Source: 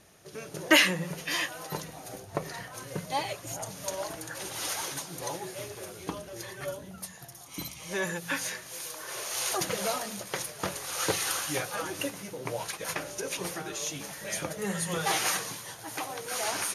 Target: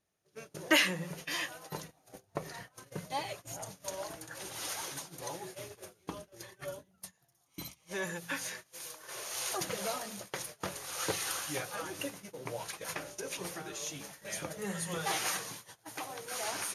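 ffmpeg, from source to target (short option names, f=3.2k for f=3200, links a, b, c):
-af "agate=range=-19dB:threshold=-40dB:ratio=16:detection=peak,volume=-5.5dB"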